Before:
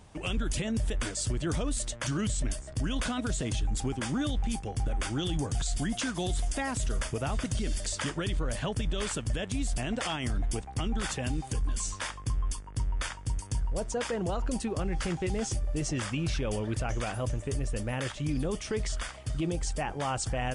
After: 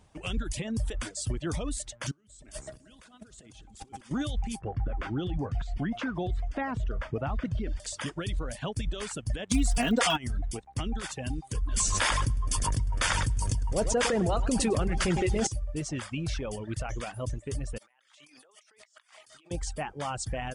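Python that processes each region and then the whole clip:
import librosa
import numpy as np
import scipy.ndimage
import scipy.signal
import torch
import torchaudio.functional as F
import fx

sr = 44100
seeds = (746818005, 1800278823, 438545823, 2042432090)

y = fx.chain(x, sr, fx.low_shelf(hz=100.0, db=-11.5),
    fx.over_compress(threshold_db=-41.0, ratio=-0.5),
    fx.echo_heads(ms=61, heads='first and third', feedback_pct=60, wet_db=-14), at=(2.11, 4.11))
y = fx.chain(y, sr, fx.lowpass(hz=1900.0, slope=12),
    fx.env_flatten(amount_pct=50), at=(4.61, 7.8))
y = fx.comb(y, sr, ms=4.2, depth=0.86, at=(9.5, 10.16), fade=0.02)
y = fx.dmg_crackle(y, sr, seeds[0], per_s=79.0, level_db=-33.0, at=(9.5, 10.16), fade=0.02)
y = fx.env_flatten(y, sr, amount_pct=70, at=(9.5, 10.16), fade=0.02)
y = fx.chain(y, sr, fx.echo_feedback(ms=104, feedback_pct=46, wet_db=-8.5),
    fx.env_flatten(amount_pct=100), at=(11.72, 15.47))
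y = fx.chain(y, sr, fx.highpass(hz=920.0, slope=12),
    fx.over_compress(threshold_db=-53.0, ratio=-1.0), at=(17.78, 19.51))
y = fx.dereverb_blind(y, sr, rt60_s=0.81)
y = fx.upward_expand(y, sr, threshold_db=-41.0, expansion=1.5)
y = y * 10.0 ** (2.5 / 20.0)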